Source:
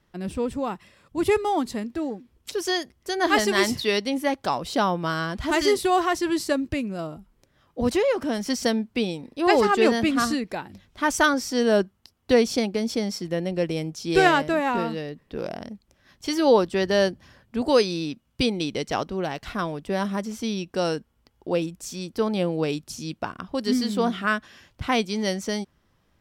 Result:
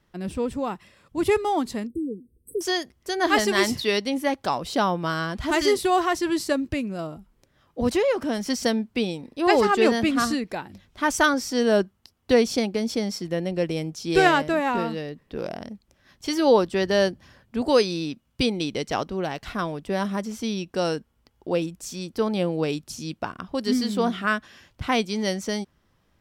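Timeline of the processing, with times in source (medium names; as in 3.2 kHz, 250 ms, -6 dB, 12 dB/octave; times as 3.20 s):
1.87–2.61 s: brick-wall FIR band-stop 520–7900 Hz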